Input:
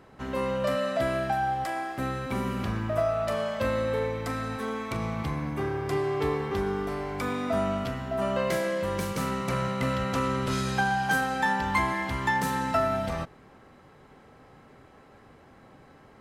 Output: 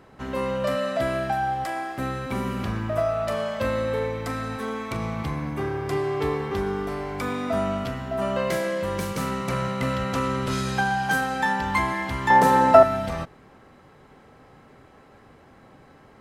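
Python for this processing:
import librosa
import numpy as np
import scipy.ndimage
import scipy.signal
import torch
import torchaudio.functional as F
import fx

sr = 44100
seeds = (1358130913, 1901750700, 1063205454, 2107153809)

y = fx.peak_eq(x, sr, hz=590.0, db=14.5, octaves=2.1, at=(12.3, 12.83))
y = y * 10.0 ** (2.0 / 20.0)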